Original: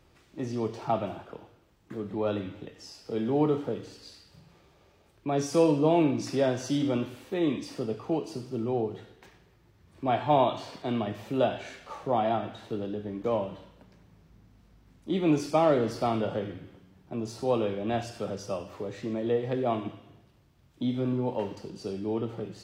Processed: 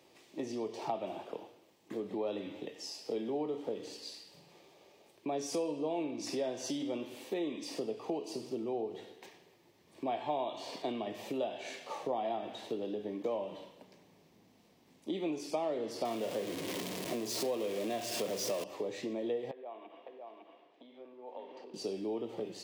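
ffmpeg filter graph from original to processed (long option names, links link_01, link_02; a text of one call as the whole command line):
ffmpeg -i in.wav -filter_complex "[0:a]asettb=1/sr,asplit=3[link_01][link_02][link_03];[link_01]atrim=end=16.054[link_04];[link_02]atrim=start=16.05:end=18.64,asetpts=PTS-STARTPTS,afade=type=in:duration=0.004:curve=qsin,afade=type=out:start_time=2.586:duration=0.004:curve=qsin,aeval=exprs='val(0)+0.5*0.0266*sgn(val(0))':channel_layout=same,bandreject=frequency=820:width=5.6[link_05];[link_03]atrim=start=18.636[link_06];[link_04][link_05]acrossfade=duration=0.004:curve1=hsin:curve2=qsin[link_07];[link_07][link_06]acrossfade=duration=0.004:curve1=qsin:curve2=hsin,asettb=1/sr,asplit=3[link_08][link_09][link_10];[link_08]atrim=end=19.514[link_11];[link_09]atrim=start=19.51:end=21.74,asetpts=PTS-STARTPTS,afade=type=in:duration=0.004:curve=qsin,afade=type=out:start_time=2.226:duration=0.004:curve=qsin,acompressor=threshold=-40dB:ratio=12:attack=3.2:release=140:knee=1:detection=peak,highpass=530,lowpass=2200,aecho=1:1:555:0.668,atrim=end_sample=98343[link_12];[link_10]atrim=start=21.736[link_13];[link_11][link_12]acrossfade=duration=0.004:curve1=hsin:curve2=qsin[link_14];[link_14][link_13]acrossfade=duration=0.004:curve1=qsin:curve2=hsin,acompressor=threshold=-34dB:ratio=6,highpass=310,equalizer=frequency=1400:width_type=o:width=0.52:gain=-13,volume=3.5dB" out.wav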